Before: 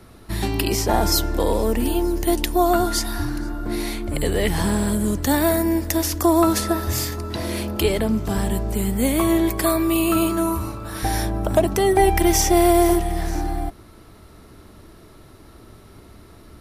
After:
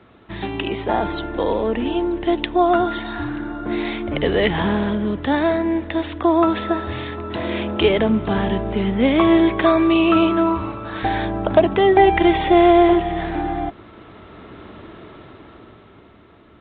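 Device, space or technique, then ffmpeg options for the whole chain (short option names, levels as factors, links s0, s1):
Bluetooth headset: -af "highpass=f=200:p=1,dynaudnorm=f=130:g=21:m=3.76,aresample=8000,aresample=44100" -ar 16000 -c:a sbc -b:a 64k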